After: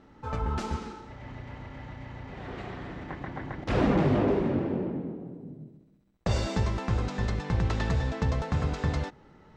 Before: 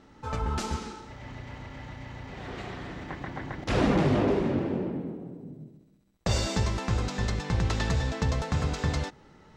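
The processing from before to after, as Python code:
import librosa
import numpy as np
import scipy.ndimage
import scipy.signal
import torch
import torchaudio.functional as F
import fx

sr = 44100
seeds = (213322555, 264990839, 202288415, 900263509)

y = fx.high_shelf(x, sr, hz=3900.0, db=-11.0)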